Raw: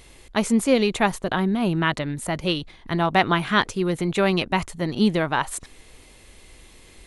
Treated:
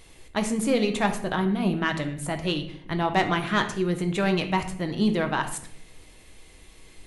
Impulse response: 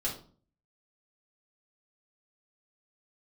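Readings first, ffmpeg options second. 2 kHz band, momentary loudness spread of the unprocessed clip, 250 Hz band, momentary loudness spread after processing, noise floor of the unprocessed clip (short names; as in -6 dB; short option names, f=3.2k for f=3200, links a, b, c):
-3.5 dB, 9 LU, -3.0 dB, 7 LU, -50 dBFS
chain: -filter_complex "[0:a]asoftclip=type=tanh:threshold=-8.5dB,asplit=2[a][b];[1:a]atrim=start_sample=2205,asetrate=24696,aresample=44100[c];[b][c]afir=irnorm=-1:irlink=0,volume=-11dB[d];[a][d]amix=inputs=2:normalize=0,volume=-6dB"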